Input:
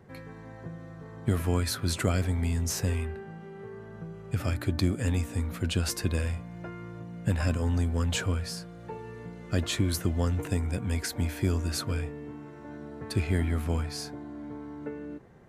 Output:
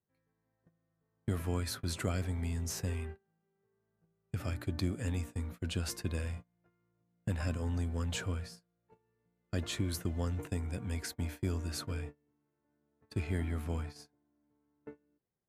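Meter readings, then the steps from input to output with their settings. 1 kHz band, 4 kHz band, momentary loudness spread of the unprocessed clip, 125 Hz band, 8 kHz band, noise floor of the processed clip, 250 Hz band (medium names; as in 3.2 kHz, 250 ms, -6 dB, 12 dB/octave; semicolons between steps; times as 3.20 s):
-8.5 dB, -8.0 dB, 15 LU, -7.5 dB, -8.0 dB, -82 dBFS, -8.0 dB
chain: gate -34 dBFS, range -29 dB; trim -7.5 dB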